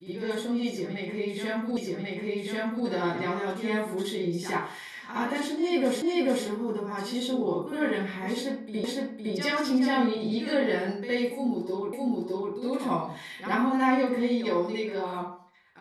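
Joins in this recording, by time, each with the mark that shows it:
0:01.77: the same again, the last 1.09 s
0:06.02: the same again, the last 0.44 s
0:08.84: the same again, the last 0.51 s
0:11.93: the same again, the last 0.61 s

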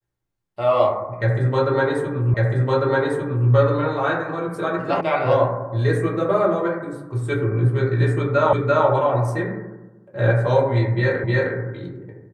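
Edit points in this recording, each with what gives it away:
0:02.34: the same again, the last 1.15 s
0:05.01: cut off before it has died away
0:08.53: the same again, the last 0.34 s
0:11.24: the same again, the last 0.31 s

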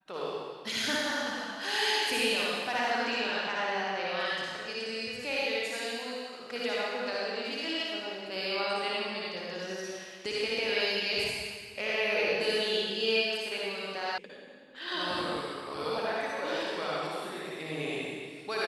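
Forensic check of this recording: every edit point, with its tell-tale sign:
0:14.18: cut off before it has died away

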